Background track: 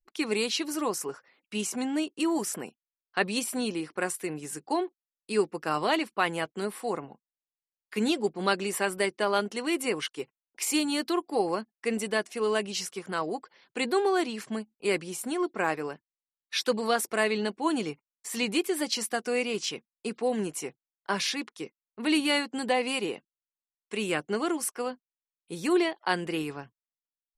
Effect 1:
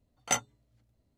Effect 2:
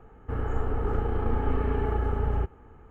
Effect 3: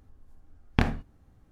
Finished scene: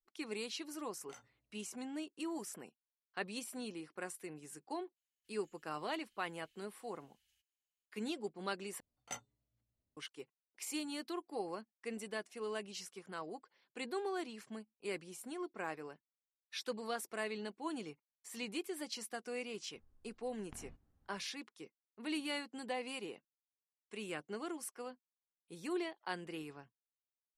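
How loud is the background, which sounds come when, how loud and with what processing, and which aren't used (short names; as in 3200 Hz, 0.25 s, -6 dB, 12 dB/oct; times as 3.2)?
background track -14 dB
0.82 add 1 -15.5 dB + compressor 5:1, threshold -38 dBFS
4.96 add 2 -7.5 dB + inverse Chebyshev high-pass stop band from 1200 Hz, stop band 60 dB
8.8 replace with 1 -17 dB
19.74 add 3 -16 dB + compressor, threshold -33 dBFS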